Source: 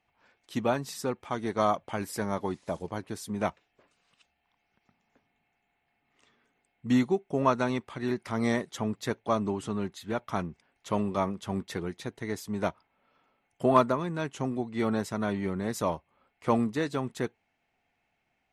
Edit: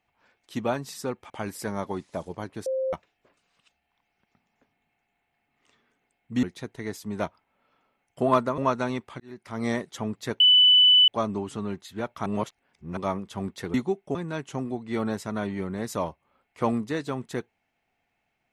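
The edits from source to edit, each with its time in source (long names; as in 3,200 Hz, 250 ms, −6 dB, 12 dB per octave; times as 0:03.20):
0:01.30–0:01.84: remove
0:03.20–0:03.47: beep over 526 Hz −24 dBFS
0:06.97–0:07.38: swap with 0:11.86–0:14.01
0:08.00–0:08.50: fade in
0:09.20: insert tone 2,990 Hz −13 dBFS 0.68 s
0:10.38–0:11.09: reverse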